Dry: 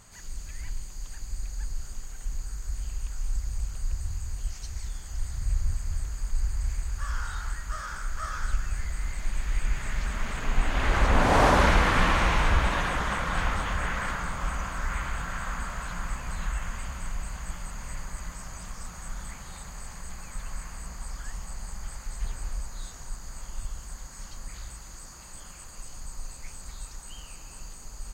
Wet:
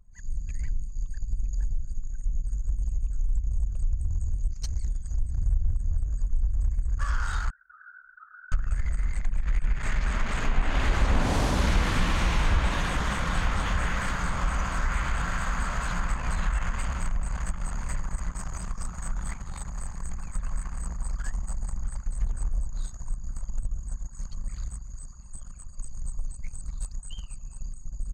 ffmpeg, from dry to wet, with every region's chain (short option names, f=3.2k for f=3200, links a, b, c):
-filter_complex "[0:a]asettb=1/sr,asplit=3[a][b][c];[a]atrim=end=7.504[d];[b]atrim=start=7.5:end=8.52,asetpts=PTS-STARTPTS,afade=t=in:d=0.004:c=qsin,afade=t=out:st=1.016:d=0.004:c=qsin,bandpass=f=1.5k:t=q:w=10,acompressor=threshold=-46dB:ratio=4:attack=3.2:release=140:knee=1:detection=peak[e];[c]atrim=start=8.516[f];[d][e]acrossfade=d=0.004:c1=hsin:c2=qsin[g];[g][f]acrossfade=d=0.004:c1=qsin:c2=hsin,acompressor=threshold=-31dB:ratio=2,anlmdn=0.251,acrossover=split=310|3000[h][i][j];[i]acompressor=threshold=-38dB:ratio=6[k];[h][k][j]amix=inputs=3:normalize=0,volume=7.5dB"